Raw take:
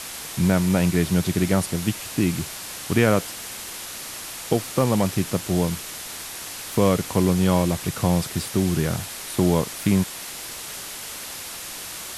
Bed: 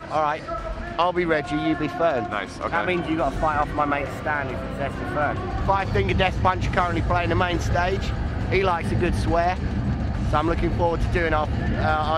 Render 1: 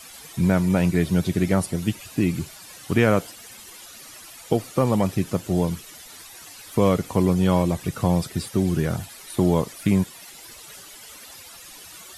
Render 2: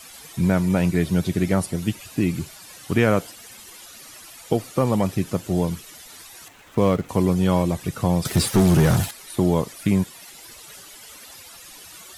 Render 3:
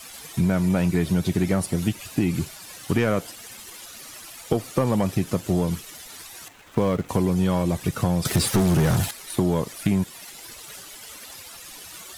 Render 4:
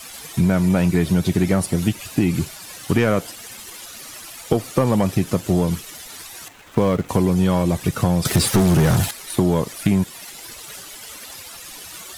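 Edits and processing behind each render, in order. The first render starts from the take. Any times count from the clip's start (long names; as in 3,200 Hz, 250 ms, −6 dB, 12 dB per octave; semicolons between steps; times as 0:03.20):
broadband denoise 13 dB, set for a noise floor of −35 dBFS
0:06.48–0:07.09: running median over 9 samples; 0:08.25–0:09.11: leveller curve on the samples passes 3
leveller curve on the samples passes 1; downward compressor 4 to 1, threshold −18 dBFS, peak gain reduction 6.5 dB
level +4 dB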